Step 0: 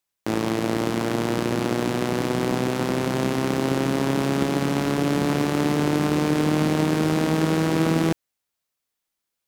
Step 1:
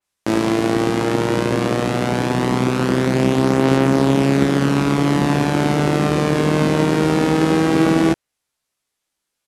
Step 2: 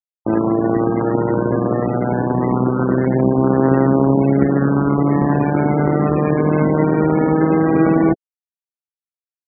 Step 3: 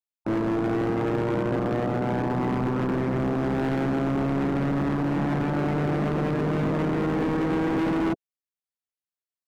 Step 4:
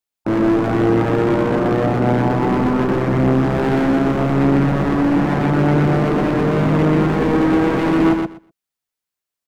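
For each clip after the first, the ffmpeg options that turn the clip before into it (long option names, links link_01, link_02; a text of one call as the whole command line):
ffmpeg -i in.wav -filter_complex "[0:a]lowpass=frequency=12000:width=0.5412,lowpass=frequency=12000:width=1.3066,asplit=2[link_01][link_02];[link_02]adelay=15,volume=-6dB[link_03];[link_01][link_03]amix=inputs=2:normalize=0,adynamicequalizer=threshold=0.00794:dfrequency=3200:dqfactor=0.7:tfrequency=3200:tqfactor=0.7:attack=5:release=100:ratio=0.375:range=1.5:mode=cutabove:tftype=highshelf,volume=5dB" out.wav
ffmpeg -i in.wav -af "afftfilt=real='re*gte(hypot(re,im),0.126)':imag='im*gte(hypot(re,im),0.126)':win_size=1024:overlap=0.75,volume=1.5dB" out.wav
ffmpeg -i in.wav -af "asoftclip=type=hard:threshold=-18dB,volume=-4dB" out.wav
ffmpeg -i in.wav -af "aecho=1:1:123|246|369:0.631|0.0946|0.0142,volume=7.5dB" out.wav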